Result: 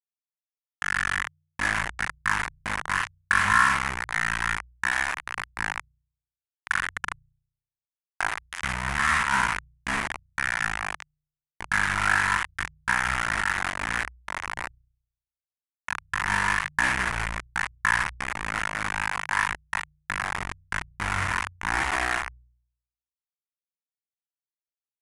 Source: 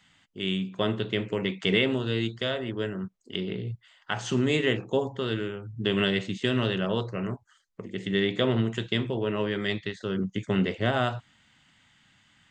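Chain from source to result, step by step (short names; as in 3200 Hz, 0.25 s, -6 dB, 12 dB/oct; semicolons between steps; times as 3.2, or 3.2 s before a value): spectral trails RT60 0.43 s; high shelf 5800 Hz +7 dB; bit-crush 4-bit; notches 60/120/180/240/300 Hz; speed mistake 15 ips tape played at 7.5 ips; graphic EQ 125/250/500/1000/2000/4000 Hz -7/-8/-10/+7/+11/-5 dB; gain -4.5 dB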